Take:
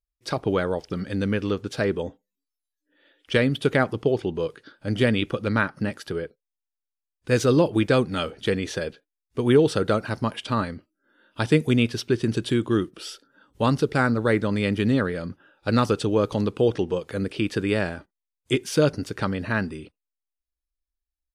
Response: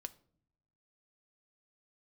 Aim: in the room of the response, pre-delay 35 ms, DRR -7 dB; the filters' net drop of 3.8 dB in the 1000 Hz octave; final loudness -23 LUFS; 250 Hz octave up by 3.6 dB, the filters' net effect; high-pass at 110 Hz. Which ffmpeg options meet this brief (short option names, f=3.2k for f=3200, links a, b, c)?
-filter_complex "[0:a]highpass=110,equalizer=f=250:t=o:g=5,equalizer=f=1k:t=o:g=-5.5,asplit=2[a][b];[1:a]atrim=start_sample=2205,adelay=35[c];[b][c]afir=irnorm=-1:irlink=0,volume=11dB[d];[a][d]amix=inputs=2:normalize=0,volume=-8dB"